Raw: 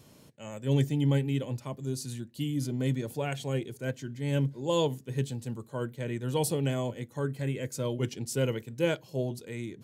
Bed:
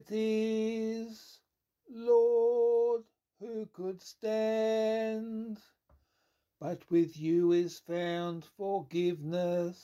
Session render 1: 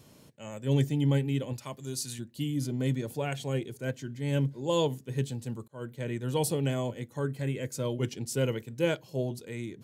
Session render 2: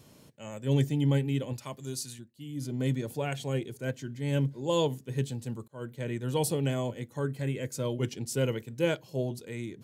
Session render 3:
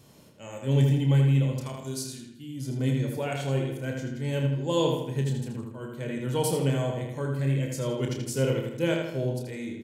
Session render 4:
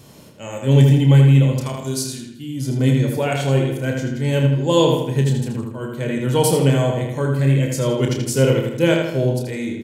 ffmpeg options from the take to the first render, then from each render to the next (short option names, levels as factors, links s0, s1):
-filter_complex "[0:a]asettb=1/sr,asplit=3[s0][s1][s2];[s0]atrim=end=1.534[s3];[s1]atrim=start=1.53:end=2.19,asetpts=PTS-STARTPTS,afade=t=in:d=0.004:c=qsin,afade=t=out:st=0.656:d=0.004:c=qsin,tiltshelf=f=850:g=-5.5[s4];[s2]atrim=start=2.186[s5];[s3][s4]acrossfade=d=0.004:c1=hsin:c2=qsin[s6];[s6][s5]acrossfade=d=0.004:c1=qsin:c2=hsin,asplit=2[s7][s8];[s7]atrim=end=5.68,asetpts=PTS-STARTPTS,afade=t=out:st=5.676:d=0.004:c=hsin[s9];[s8]atrim=start=5.68,asetpts=PTS-STARTPTS,afade=t=in:d=0.4:c=qsin[s10];[s9][s10]concat=n=2:v=0:a=1"
-filter_complex "[0:a]asplit=3[s0][s1][s2];[s0]atrim=end=2.35,asetpts=PTS-STARTPTS,afade=t=out:st=1.9:d=0.45:silence=0.149624[s3];[s1]atrim=start=2.35:end=2.37,asetpts=PTS-STARTPTS,volume=0.15[s4];[s2]atrim=start=2.37,asetpts=PTS-STARTPTS,afade=t=in:d=0.45:silence=0.149624[s5];[s3][s4][s5]concat=n=3:v=0:a=1"
-filter_complex "[0:a]asplit=2[s0][s1];[s1]adelay=30,volume=0.473[s2];[s0][s2]amix=inputs=2:normalize=0,asplit=2[s3][s4];[s4]adelay=80,lowpass=f=4900:p=1,volume=0.668,asplit=2[s5][s6];[s6]adelay=80,lowpass=f=4900:p=1,volume=0.52,asplit=2[s7][s8];[s8]adelay=80,lowpass=f=4900:p=1,volume=0.52,asplit=2[s9][s10];[s10]adelay=80,lowpass=f=4900:p=1,volume=0.52,asplit=2[s11][s12];[s12]adelay=80,lowpass=f=4900:p=1,volume=0.52,asplit=2[s13][s14];[s14]adelay=80,lowpass=f=4900:p=1,volume=0.52,asplit=2[s15][s16];[s16]adelay=80,lowpass=f=4900:p=1,volume=0.52[s17];[s3][s5][s7][s9][s11][s13][s15][s17]amix=inputs=8:normalize=0"
-af "volume=3.16,alimiter=limit=0.708:level=0:latency=1"